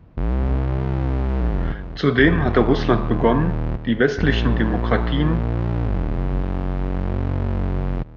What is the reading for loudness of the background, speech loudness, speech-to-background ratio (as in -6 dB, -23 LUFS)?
-24.5 LUFS, -20.5 LUFS, 4.0 dB